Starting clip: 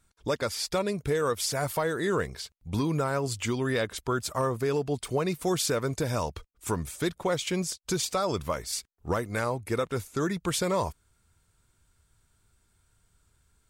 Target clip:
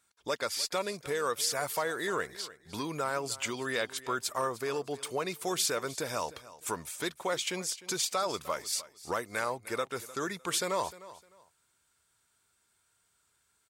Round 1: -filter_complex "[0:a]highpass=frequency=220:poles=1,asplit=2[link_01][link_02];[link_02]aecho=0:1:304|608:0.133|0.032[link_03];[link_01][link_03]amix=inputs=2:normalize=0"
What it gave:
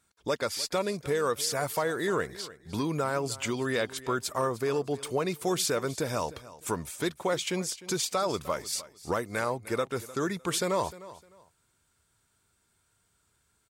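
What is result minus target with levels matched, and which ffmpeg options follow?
250 Hz band +4.5 dB
-filter_complex "[0:a]highpass=frequency=760:poles=1,asplit=2[link_01][link_02];[link_02]aecho=0:1:304|608:0.133|0.032[link_03];[link_01][link_03]amix=inputs=2:normalize=0"

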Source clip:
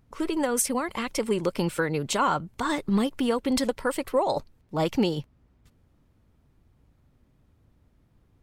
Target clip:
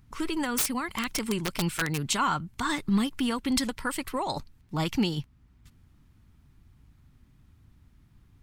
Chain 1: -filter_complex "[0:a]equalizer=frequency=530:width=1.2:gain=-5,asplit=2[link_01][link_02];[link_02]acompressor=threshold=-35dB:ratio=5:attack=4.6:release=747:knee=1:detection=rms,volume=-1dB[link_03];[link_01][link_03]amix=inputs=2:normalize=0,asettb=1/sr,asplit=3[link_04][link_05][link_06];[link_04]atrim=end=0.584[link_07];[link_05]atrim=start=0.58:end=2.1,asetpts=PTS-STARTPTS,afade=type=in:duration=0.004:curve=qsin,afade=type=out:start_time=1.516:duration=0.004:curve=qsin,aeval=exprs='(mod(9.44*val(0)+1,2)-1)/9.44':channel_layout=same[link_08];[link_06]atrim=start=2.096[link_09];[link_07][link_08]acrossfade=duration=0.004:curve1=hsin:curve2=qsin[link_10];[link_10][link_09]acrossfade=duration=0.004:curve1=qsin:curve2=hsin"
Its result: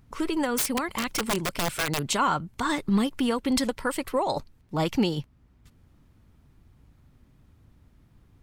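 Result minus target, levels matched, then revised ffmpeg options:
500 Hz band +4.5 dB
-filter_complex "[0:a]equalizer=frequency=530:width=1.2:gain=-14.5,asplit=2[link_01][link_02];[link_02]acompressor=threshold=-35dB:ratio=5:attack=4.6:release=747:knee=1:detection=rms,volume=-1dB[link_03];[link_01][link_03]amix=inputs=2:normalize=0,asettb=1/sr,asplit=3[link_04][link_05][link_06];[link_04]atrim=end=0.584[link_07];[link_05]atrim=start=0.58:end=2.1,asetpts=PTS-STARTPTS,afade=type=in:duration=0.004:curve=qsin,afade=type=out:start_time=1.516:duration=0.004:curve=qsin,aeval=exprs='(mod(9.44*val(0)+1,2)-1)/9.44':channel_layout=same[link_08];[link_06]atrim=start=2.096[link_09];[link_07][link_08]acrossfade=duration=0.004:curve1=hsin:curve2=qsin[link_10];[link_10][link_09]acrossfade=duration=0.004:curve1=qsin:curve2=hsin"

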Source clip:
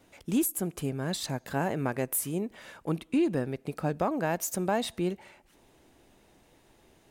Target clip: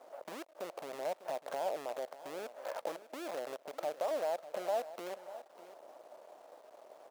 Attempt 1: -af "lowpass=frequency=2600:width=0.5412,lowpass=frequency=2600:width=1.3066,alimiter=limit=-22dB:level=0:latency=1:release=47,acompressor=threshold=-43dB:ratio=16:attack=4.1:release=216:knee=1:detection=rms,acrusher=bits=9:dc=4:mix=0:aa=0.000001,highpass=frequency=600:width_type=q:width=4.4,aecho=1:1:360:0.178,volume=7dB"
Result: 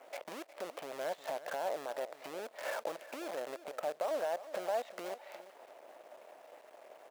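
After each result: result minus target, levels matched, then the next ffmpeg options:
echo 239 ms early; 2,000 Hz band +4.0 dB
-af "lowpass=frequency=2600:width=0.5412,lowpass=frequency=2600:width=1.3066,alimiter=limit=-22dB:level=0:latency=1:release=47,acompressor=threshold=-43dB:ratio=16:attack=4.1:release=216:knee=1:detection=rms,acrusher=bits=9:dc=4:mix=0:aa=0.000001,highpass=frequency=600:width_type=q:width=4.4,aecho=1:1:599:0.178,volume=7dB"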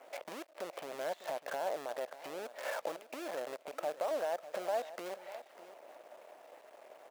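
2,000 Hz band +4.5 dB
-af "lowpass=frequency=1200:width=0.5412,lowpass=frequency=1200:width=1.3066,alimiter=limit=-22dB:level=0:latency=1:release=47,acompressor=threshold=-43dB:ratio=16:attack=4.1:release=216:knee=1:detection=rms,acrusher=bits=9:dc=4:mix=0:aa=0.000001,highpass=frequency=600:width_type=q:width=4.4,aecho=1:1:599:0.178,volume=7dB"

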